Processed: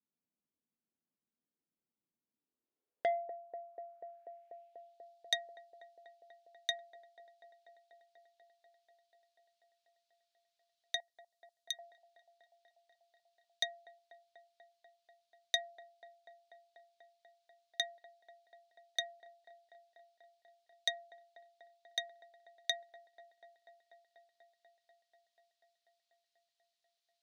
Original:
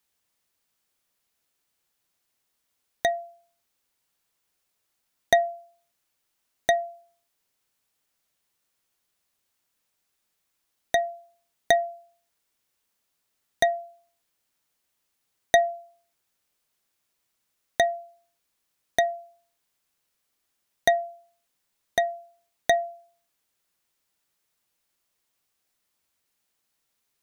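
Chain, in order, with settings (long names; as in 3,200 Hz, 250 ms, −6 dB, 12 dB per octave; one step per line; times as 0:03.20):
0:11.00–0:11.79: first difference
band-pass filter sweep 230 Hz → 4,000 Hz, 0:02.32–0:05.04
delay with a band-pass on its return 244 ms, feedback 83%, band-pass 610 Hz, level −13 dB
saturating transformer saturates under 1,900 Hz
level −1 dB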